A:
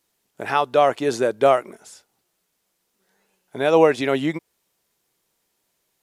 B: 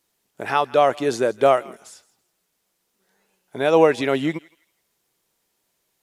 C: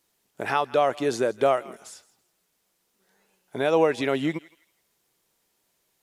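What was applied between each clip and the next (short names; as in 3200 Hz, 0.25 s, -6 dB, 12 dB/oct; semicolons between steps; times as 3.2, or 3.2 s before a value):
thinning echo 0.165 s, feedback 28%, high-pass 1200 Hz, level -20 dB
compressor 1.5:1, threshold -26 dBFS, peak gain reduction 6 dB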